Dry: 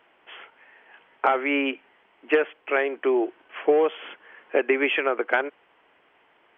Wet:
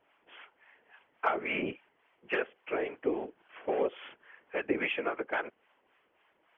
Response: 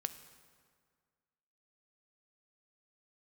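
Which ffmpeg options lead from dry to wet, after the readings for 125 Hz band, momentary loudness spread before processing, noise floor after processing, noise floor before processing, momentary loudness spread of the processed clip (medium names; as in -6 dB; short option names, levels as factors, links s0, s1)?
no reading, 10 LU, -72 dBFS, -62 dBFS, 18 LU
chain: -filter_complex "[0:a]acrossover=split=660[s0][s1];[s0]aeval=exprs='val(0)*(1-0.7/2+0.7/2*cos(2*PI*3.6*n/s))':c=same[s2];[s1]aeval=exprs='val(0)*(1-0.7/2-0.7/2*cos(2*PI*3.6*n/s))':c=same[s3];[s2][s3]amix=inputs=2:normalize=0,afftfilt=real='hypot(re,im)*cos(2*PI*random(0))':imag='hypot(re,im)*sin(2*PI*random(1))':win_size=512:overlap=0.75"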